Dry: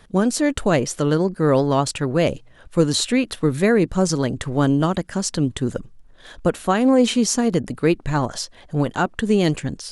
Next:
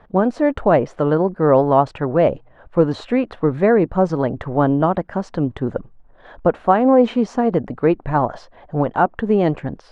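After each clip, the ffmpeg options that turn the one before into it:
ffmpeg -i in.wav -af "lowpass=1800,equalizer=frequency=760:width_type=o:width=1.4:gain=9,volume=-1dB" out.wav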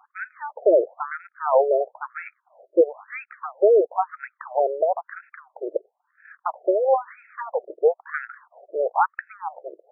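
ffmpeg -i in.wav -af "aeval=exprs='0.891*(cos(1*acos(clip(val(0)/0.891,-1,1)))-cos(1*PI/2))+0.0631*(cos(6*acos(clip(val(0)/0.891,-1,1)))-cos(6*PI/2))':channel_layout=same,afftfilt=real='re*between(b*sr/1024,460*pow(1900/460,0.5+0.5*sin(2*PI*1*pts/sr))/1.41,460*pow(1900/460,0.5+0.5*sin(2*PI*1*pts/sr))*1.41)':imag='im*between(b*sr/1024,460*pow(1900/460,0.5+0.5*sin(2*PI*1*pts/sr))/1.41,460*pow(1900/460,0.5+0.5*sin(2*PI*1*pts/sr))*1.41)':win_size=1024:overlap=0.75" out.wav

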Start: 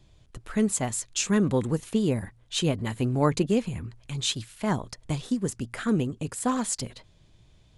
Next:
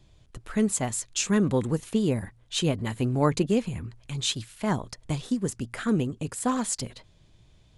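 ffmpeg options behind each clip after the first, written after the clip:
ffmpeg -i in.wav -af anull out.wav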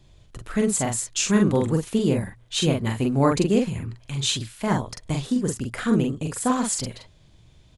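ffmpeg -i in.wav -filter_complex "[0:a]asplit=2[link_01][link_02];[link_02]adelay=44,volume=-3.5dB[link_03];[link_01][link_03]amix=inputs=2:normalize=0,volume=2.5dB" out.wav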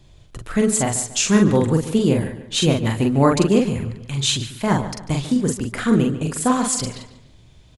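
ffmpeg -i in.wav -filter_complex "[0:a]asplit=2[link_01][link_02];[link_02]adelay=144,lowpass=frequency=4400:poles=1,volume=-13dB,asplit=2[link_03][link_04];[link_04]adelay=144,lowpass=frequency=4400:poles=1,volume=0.39,asplit=2[link_05][link_06];[link_06]adelay=144,lowpass=frequency=4400:poles=1,volume=0.39,asplit=2[link_07][link_08];[link_08]adelay=144,lowpass=frequency=4400:poles=1,volume=0.39[link_09];[link_01][link_03][link_05][link_07][link_09]amix=inputs=5:normalize=0,volume=4dB" out.wav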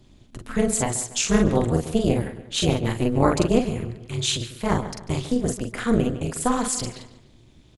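ffmpeg -i in.wav -af "tremolo=f=240:d=0.889" out.wav

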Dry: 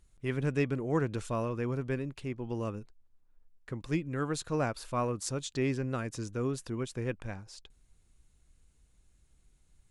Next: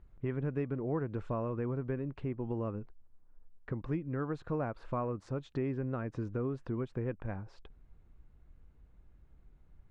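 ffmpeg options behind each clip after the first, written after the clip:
ffmpeg -i in.wav -af "acompressor=threshold=-40dB:ratio=3,lowpass=1400,volume=6dB" out.wav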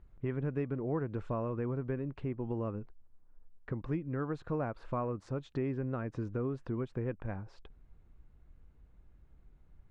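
ffmpeg -i in.wav -af anull out.wav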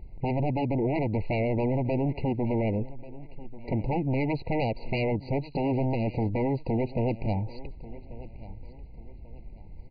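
ffmpeg -i in.wav -af "aresample=11025,aeval=exprs='0.075*sin(PI/2*3.55*val(0)/0.075)':channel_layout=same,aresample=44100,aecho=1:1:1139|2278|3417:0.126|0.0428|0.0146,afftfilt=real='re*eq(mod(floor(b*sr/1024/970),2),0)':imag='im*eq(mod(floor(b*sr/1024/970),2),0)':win_size=1024:overlap=0.75" out.wav

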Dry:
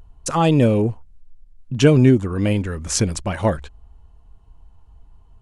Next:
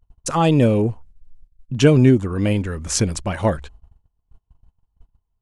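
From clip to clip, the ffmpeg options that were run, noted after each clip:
ffmpeg -i in.wav -af "agate=range=-25dB:threshold=-41dB:ratio=16:detection=peak" out.wav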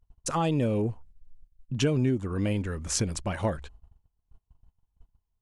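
ffmpeg -i in.wav -af "acompressor=threshold=-18dB:ratio=2.5,volume=-6dB" out.wav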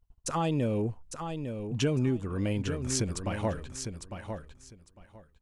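ffmpeg -i in.wav -af "aecho=1:1:853|1706|2559:0.422|0.0759|0.0137,volume=-2.5dB" out.wav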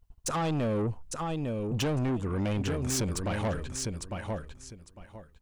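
ffmpeg -i in.wav -af "asoftclip=type=tanh:threshold=-31dB,volume=5.5dB" out.wav

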